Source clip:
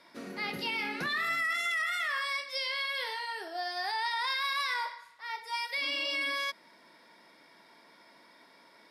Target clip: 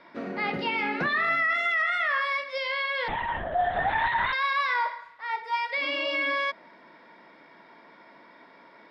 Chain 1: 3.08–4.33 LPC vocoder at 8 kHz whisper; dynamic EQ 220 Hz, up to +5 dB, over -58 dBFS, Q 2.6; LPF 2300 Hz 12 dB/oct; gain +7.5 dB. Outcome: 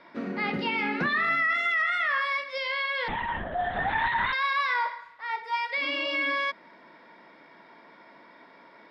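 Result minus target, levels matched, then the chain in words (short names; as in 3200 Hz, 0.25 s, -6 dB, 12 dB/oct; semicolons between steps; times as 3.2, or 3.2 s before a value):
250 Hz band +3.0 dB
3.08–4.33 LPC vocoder at 8 kHz whisper; dynamic EQ 660 Hz, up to +5 dB, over -58 dBFS, Q 2.6; LPF 2300 Hz 12 dB/oct; gain +7.5 dB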